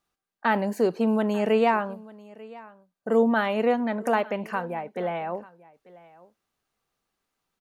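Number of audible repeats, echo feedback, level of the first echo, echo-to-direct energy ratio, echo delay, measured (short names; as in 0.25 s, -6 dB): 1, no steady repeat, -21.5 dB, -21.5 dB, 0.892 s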